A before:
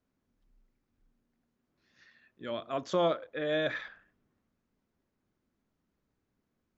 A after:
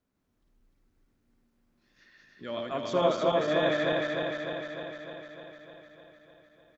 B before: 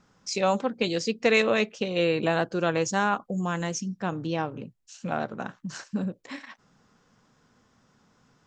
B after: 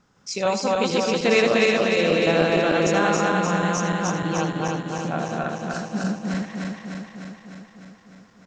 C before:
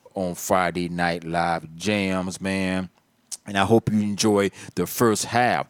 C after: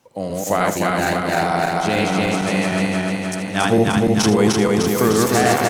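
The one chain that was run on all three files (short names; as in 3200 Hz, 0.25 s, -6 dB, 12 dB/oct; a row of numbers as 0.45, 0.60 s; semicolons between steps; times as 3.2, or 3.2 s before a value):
regenerating reverse delay 0.151 s, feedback 81%, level -0.5 dB; on a send: echo 80 ms -12.5 dB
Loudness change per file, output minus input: +3.5, +5.0, +5.0 LU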